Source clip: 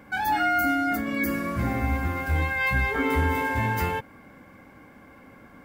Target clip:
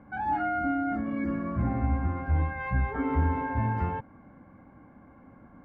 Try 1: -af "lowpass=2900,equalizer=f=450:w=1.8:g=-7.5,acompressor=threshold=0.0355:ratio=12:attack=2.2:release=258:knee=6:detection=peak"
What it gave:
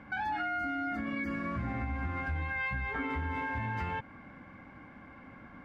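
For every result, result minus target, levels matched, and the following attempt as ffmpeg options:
4 kHz band +14.5 dB; compression: peak gain reduction +12.5 dB
-af "lowpass=940,equalizer=f=450:w=1.8:g=-7.5,acompressor=threshold=0.0355:ratio=12:attack=2.2:release=258:knee=6:detection=peak"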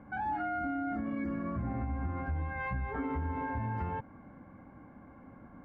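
compression: peak gain reduction +11.5 dB
-af "lowpass=940,equalizer=f=450:w=1.8:g=-7.5"

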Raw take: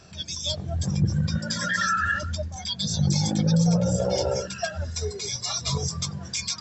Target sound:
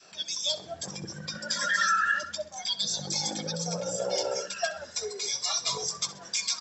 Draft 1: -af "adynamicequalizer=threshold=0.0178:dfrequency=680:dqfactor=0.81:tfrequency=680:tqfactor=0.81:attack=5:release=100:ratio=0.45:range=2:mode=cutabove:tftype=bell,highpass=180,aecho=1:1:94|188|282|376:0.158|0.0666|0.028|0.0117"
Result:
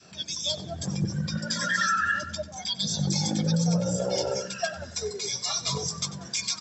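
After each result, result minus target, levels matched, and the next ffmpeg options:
250 Hz band +10.5 dB; echo 29 ms late
-af "adynamicequalizer=threshold=0.0178:dfrequency=680:dqfactor=0.81:tfrequency=680:tqfactor=0.81:attack=5:release=100:ratio=0.45:range=2:mode=cutabove:tftype=bell,highpass=450,aecho=1:1:94|188|282|376:0.158|0.0666|0.028|0.0117"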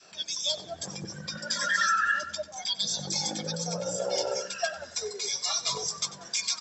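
echo 29 ms late
-af "adynamicequalizer=threshold=0.0178:dfrequency=680:dqfactor=0.81:tfrequency=680:tqfactor=0.81:attack=5:release=100:ratio=0.45:range=2:mode=cutabove:tftype=bell,highpass=450,aecho=1:1:65|130|195|260:0.158|0.0666|0.028|0.0117"

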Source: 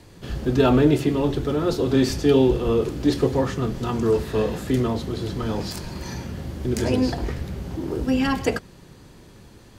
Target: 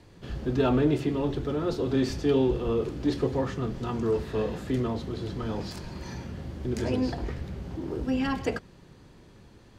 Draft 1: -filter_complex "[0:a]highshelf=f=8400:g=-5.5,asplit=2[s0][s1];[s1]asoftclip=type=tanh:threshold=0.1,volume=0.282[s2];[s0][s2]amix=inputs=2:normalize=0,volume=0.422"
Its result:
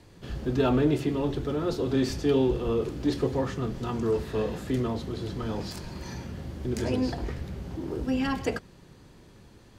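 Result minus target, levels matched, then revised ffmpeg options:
8 kHz band +3.0 dB
-filter_complex "[0:a]highshelf=f=8400:g=-13,asplit=2[s0][s1];[s1]asoftclip=type=tanh:threshold=0.1,volume=0.282[s2];[s0][s2]amix=inputs=2:normalize=0,volume=0.422"

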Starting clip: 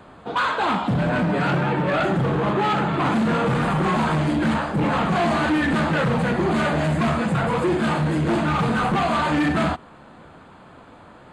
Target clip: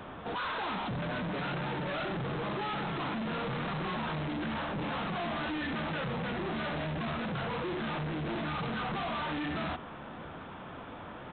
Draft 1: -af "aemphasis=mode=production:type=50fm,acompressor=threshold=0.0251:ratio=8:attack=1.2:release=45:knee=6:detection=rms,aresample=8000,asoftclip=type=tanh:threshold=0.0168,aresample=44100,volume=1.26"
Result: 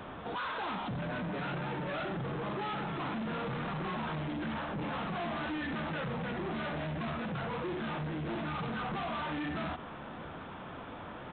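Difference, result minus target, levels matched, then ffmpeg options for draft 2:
compression: peak gain reduction +7.5 dB
-af "aemphasis=mode=production:type=50fm,acompressor=threshold=0.0668:ratio=8:attack=1.2:release=45:knee=6:detection=rms,aresample=8000,asoftclip=type=tanh:threshold=0.0168,aresample=44100,volume=1.26"

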